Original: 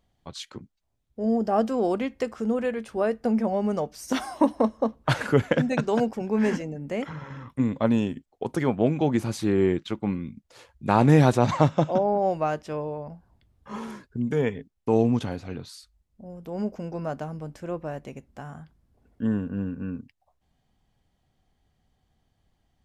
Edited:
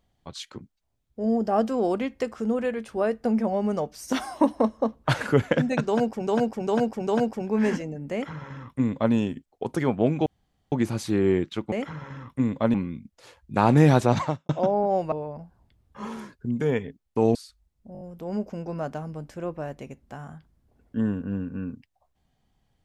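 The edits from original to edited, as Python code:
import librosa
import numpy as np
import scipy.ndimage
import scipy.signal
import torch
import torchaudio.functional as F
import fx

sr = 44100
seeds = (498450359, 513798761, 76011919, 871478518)

y = fx.edit(x, sr, fx.repeat(start_s=5.87, length_s=0.4, count=4),
    fx.duplicate(start_s=6.92, length_s=1.02, to_s=10.06),
    fx.insert_room_tone(at_s=9.06, length_s=0.46),
    fx.fade_out_span(start_s=11.52, length_s=0.29, curve='qua'),
    fx.cut(start_s=12.44, length_s=0.39),
    fx.cut(start_s=15.06, length_s=0.63),
    fx.stutter(start_s=16.27, slice_s=0.02, count=5), tone=tone)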